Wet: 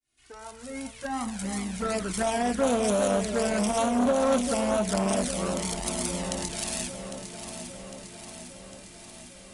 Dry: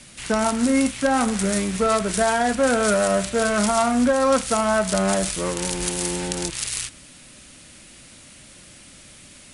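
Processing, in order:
fade in at the beginning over 2.41 s
flanger swept by the level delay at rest 2.8 ms, full sweep at −15.5 dBFS
delay that swaps between a low-pass and a high-pass 402 ms, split 1,100 Hz, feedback 78%, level −8.5 dB
saturating transformer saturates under 680 Hz
level −2 dB

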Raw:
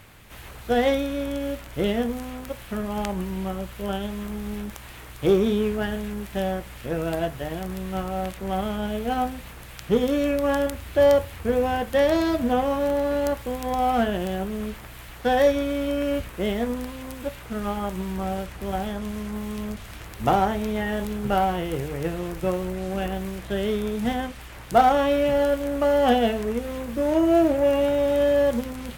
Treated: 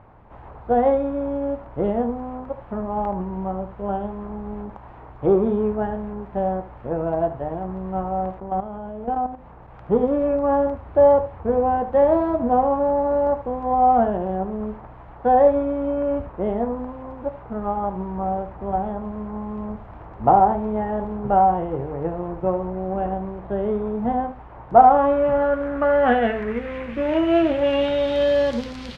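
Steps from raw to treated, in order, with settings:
low-pass filter sweep 890 Hz → 4,600 Hz, 0:24.66–0:28.49
single-tap delay 75 ms −13.5 dB
0:08.40–0:09.74: output level in coarse steps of 11 dB

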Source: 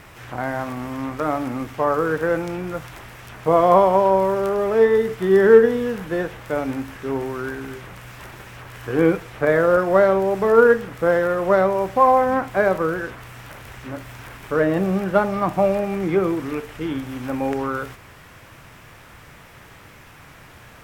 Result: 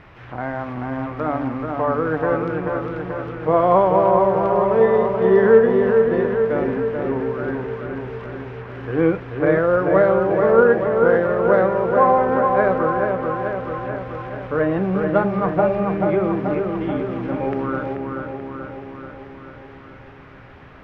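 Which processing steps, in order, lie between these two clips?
high-frequency loss of the air 290 metres
on a send: delay with a low-pass on its return 434 ms, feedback 63%, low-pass 2,100 Hz, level −4 dB

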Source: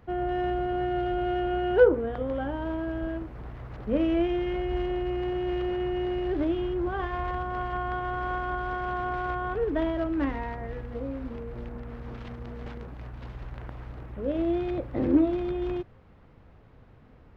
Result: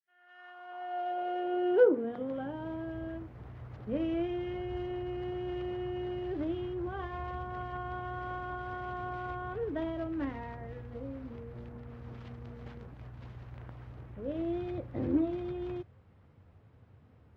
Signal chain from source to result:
fade in at the beginning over 1.14 s
high-pass filter sweep 1,700 Hz → 90 Hz, 0:00.19–0:02.97
level −8 dB
Ogg Vorbis 48 kbit/s 48,000 Hz

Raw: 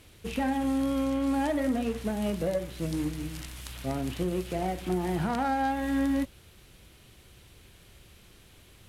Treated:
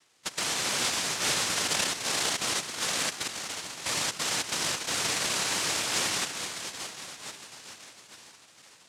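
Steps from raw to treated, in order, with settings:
output level in coarse steps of 17 dB
feedback delay with all-pass diffusion 507 ms, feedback 59%, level −8 dB
cochlear-implant simulation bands 1
level +4.5 dB

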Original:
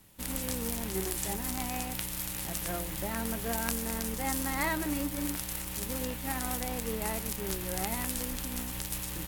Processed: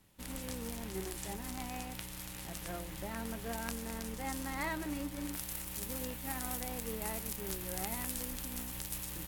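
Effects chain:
high-shelf EQ 8,700 Hz −7.5 dB, from 0:05.33 +3 dB
level −6 dB

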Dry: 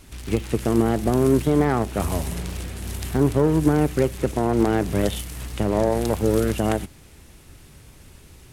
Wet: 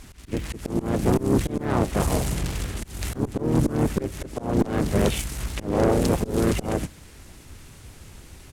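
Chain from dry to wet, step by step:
pitch-shifted copies added −5 semitones −1 dB, −3 semitones −6 dB, +3 semitones −13 dB
volume swells 236 ms
tube saturation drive 15 dB, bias 0.55
level +2 dB

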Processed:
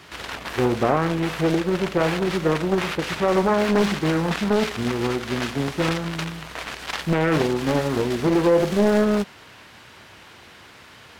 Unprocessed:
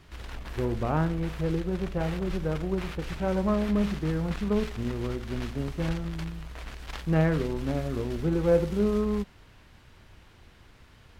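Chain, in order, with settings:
high-pass filter 110 Hz 12 dB per octave
low-shelf EQ 330 Hz −10.5 dB
boost into a limiter +21.5 dB
highs frequency-modulated by the lows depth 0.66 ms
level −7.5 dB

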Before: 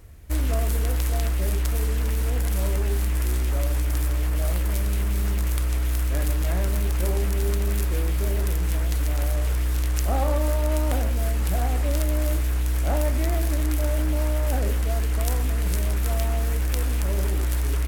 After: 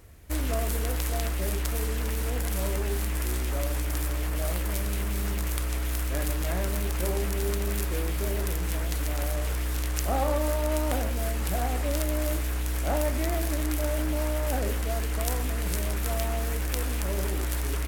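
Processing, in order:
low-shelf EQ 130 Hz −7.5 dB

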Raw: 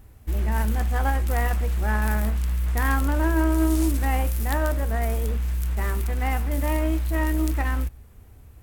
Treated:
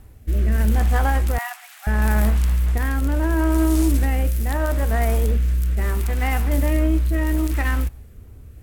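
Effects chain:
0:01.38–0:01.87: Butterworth high-pass 730 Hz 72 dB per octave
brickwall limiter −15.5 dBFS, peak gain reduction 7 dB
rotating-speaker cabinet horn 0.75 Hz
level +6.5 dB

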